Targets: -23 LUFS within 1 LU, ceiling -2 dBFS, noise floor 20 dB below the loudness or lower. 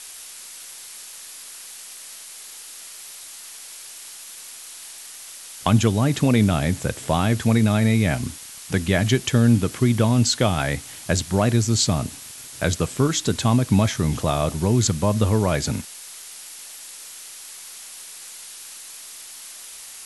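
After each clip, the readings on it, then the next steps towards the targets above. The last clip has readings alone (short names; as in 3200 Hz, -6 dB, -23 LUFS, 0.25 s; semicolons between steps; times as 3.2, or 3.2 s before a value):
noise floor -40 dBFS; noise floor target -41 dBFS; loudness -21.0 LUFS; peak -3.5 dBFS; loudness target -23.0 LUFS
-> denoiser 6 dB, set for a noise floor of -40 dBFS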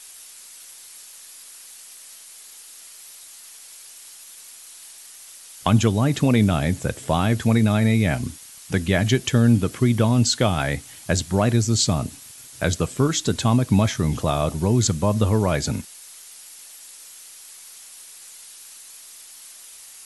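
noise floor -44 dBFS; loudness -21.0 LUFS; peak -4.0 dBFS; loudness target -23.0 LUFS
-> gain -2 dB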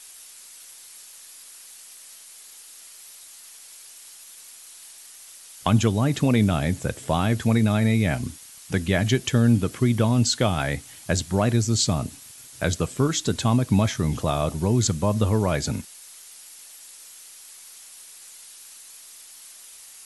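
loudness -23.0 LUFS; peak -6.0 dBFS; noise floor -46 dBFS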